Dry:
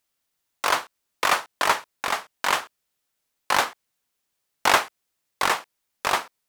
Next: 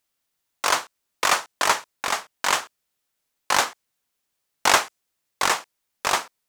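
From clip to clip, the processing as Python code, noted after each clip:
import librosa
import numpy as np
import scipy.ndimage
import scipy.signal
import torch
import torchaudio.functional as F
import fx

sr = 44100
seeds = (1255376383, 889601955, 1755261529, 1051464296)

y = fx.dynamic_eq(x, sr, hz=6800.0, q=1.1, threshold_db=-42.0, ratio=4.0, max_db=7)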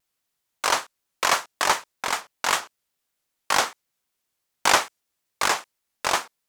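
y = fx.vibrato_shape(x, sr, shape='square', rate_hz=5.2, depth_cents=100.0)
y = y * 10.0 ** (-1.0 / 20.0)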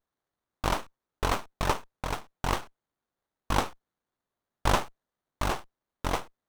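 y = fx.running_max(x, sr, window=17)
y = y * 10.0 ** (-5.0 / 20.0)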